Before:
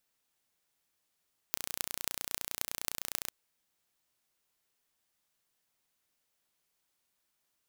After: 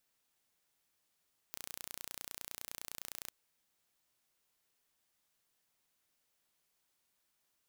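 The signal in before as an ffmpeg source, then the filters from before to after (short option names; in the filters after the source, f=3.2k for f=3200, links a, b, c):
-f lavfi -i "aevalsrc='0.708*eq(mod(n,1480),0)*(0.5+0.5*eq(mod(n,11840),0))':d=1.77:s=44100"
-af "aeval=exprs='clip(val(0),-1,0.158)':c=same"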